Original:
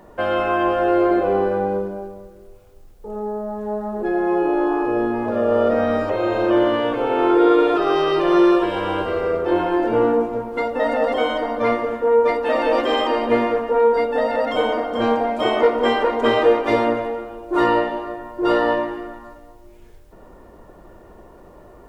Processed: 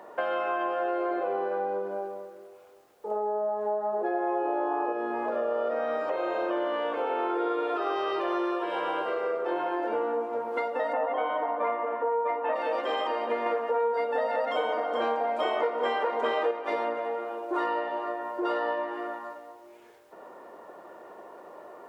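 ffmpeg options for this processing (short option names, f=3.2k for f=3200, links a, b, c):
-filter_complex "[0:a]asettb=1/sr,asplit=3[a][b][c];[a]atrim=end=3.114[d];[b]atrim=start=3.11:end=4.93,asetpts=PTS-STARTPTS,afade=t=in:d=0.004:c=qsin,afade=t=out:st=1.816:d=0.004:c=qsin,equalizer=f=630:t=o:w=1.7:g=8[e];[c]atrim=start=4.926[f];[d][e]acrossfade=d=0.004:c1=hsin:c2=qsin[g];[g][f]acrossfade=d=0.004:c1=qsin:c2=hsin,asplit=3[h][i][j];[h]afade=t=out:st=10.92:d=0.02[k];[i]highpass=270,equalizer=f=280:t=q:w=4:g=9,equalizer=f=700:t=q:w=4:g=4,equalizer=f=1k:t=q:w=4:g=8,lowpass=f=2.9k:w=0.5412,lowpass=f=2.9k:w=1.3066,afade=t=in:st=10.92:d=0.02,afade=t=out:st=12.54:d=0.02[l];[j]afade=t=in:st=12.54:d=0.02[m];[k][l][m]amix=inputs=3:normalize=0,asplit=3[n][o][p];[n]atrim=end=13.462[q];[o]atrim=start=13.458:end=16.512,asetpts=PTS-STARTPTS,volume=5.5dB[r];[p]atrim=start=16.508[s];[q][r]acrossfade=d=0.004:c1=hsin:c2=hsin[t];[t][s]acrossfade=d=0.004:c1=hsin:c2=hsin,highpass=540,highshelf=f=2.6k:g=-9,acompressor=threshold=-32dB:ratio=4,volume=4dB"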